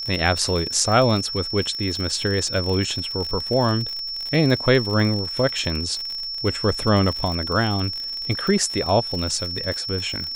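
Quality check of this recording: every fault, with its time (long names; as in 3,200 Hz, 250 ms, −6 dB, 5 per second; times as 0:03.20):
surface crackle 70 per second −26 dBFS
whistle 5,400 Hz −27 dBFS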